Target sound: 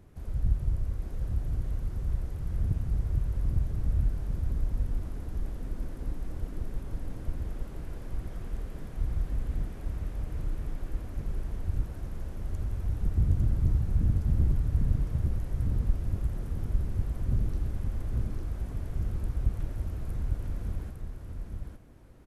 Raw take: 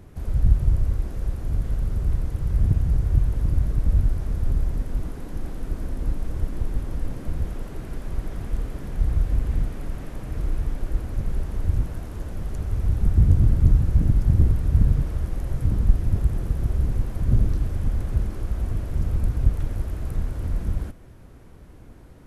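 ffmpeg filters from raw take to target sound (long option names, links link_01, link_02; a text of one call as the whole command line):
ffmpeg -i in.wav -af "aecho=1:1:853:0.631,volume=-9dB" out.wav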